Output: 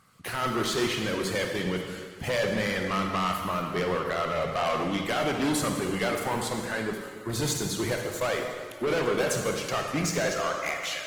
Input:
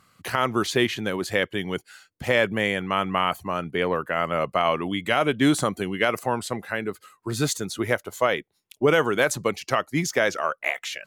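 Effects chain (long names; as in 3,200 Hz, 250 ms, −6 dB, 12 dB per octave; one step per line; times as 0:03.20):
soft clipping −24 dBFS, distortion −6 dB
convolution reverb RT60 1.9 s, pre-delay 28 ms, DRR 2.5 dB
Opus 20 kbit/s 48,000 Hz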